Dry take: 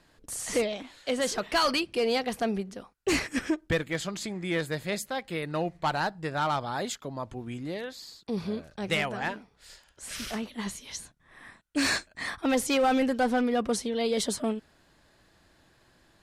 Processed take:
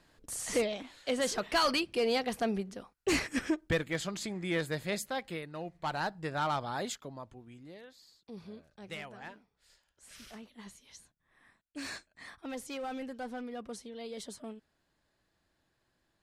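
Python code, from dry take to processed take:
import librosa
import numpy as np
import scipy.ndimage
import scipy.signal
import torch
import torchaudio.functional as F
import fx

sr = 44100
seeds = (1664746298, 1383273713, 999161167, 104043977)

y = fx.gain(x, sr, db=fx.line((5.28, -3.0), (5.51, -12.5), (6.11, -4.0), (6.92, -4.0), (7.47, -15.0)))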